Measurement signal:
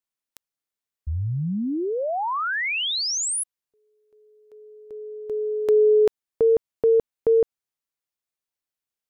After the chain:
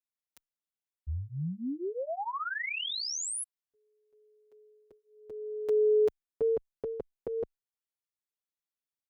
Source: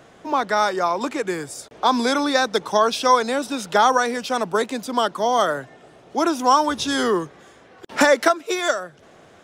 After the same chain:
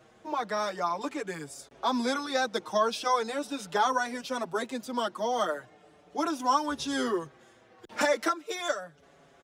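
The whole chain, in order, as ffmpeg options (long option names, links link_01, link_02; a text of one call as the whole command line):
ffmpeg -i in.wav -filter_complex "[0:a]asplit=2[link_01][link_02];[link_02]adelay=5.9,afreqshift=-0.39[link_03];[link_01][link_03]amix=inputs=2:normalize=1,volume=-6.5dB" out.wav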